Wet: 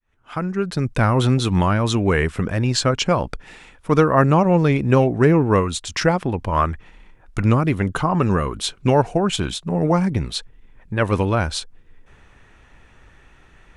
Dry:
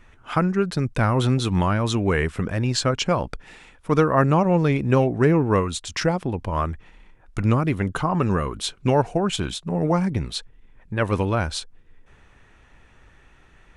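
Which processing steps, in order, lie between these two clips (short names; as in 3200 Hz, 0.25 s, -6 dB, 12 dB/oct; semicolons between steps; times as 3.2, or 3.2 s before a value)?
opening faded in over 0.94 s; 6.04–7.49 dynamic EQ 1600 Hz, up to +5 dB, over -36 dBFS, Q 0.71; gain +3 dB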